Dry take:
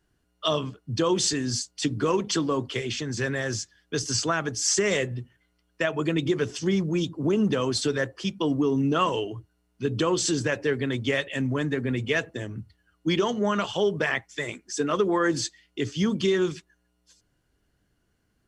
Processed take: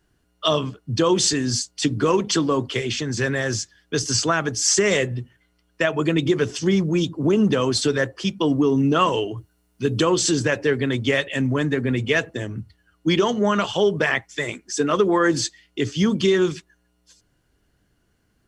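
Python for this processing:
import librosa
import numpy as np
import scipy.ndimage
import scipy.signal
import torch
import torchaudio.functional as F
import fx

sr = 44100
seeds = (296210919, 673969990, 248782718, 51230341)

y = fx.high_shelf(x, sr, hz=7500.0, db=9.5, at=(9.37, 10.05))
y = y * librosa.db_to_amplitude(5.0)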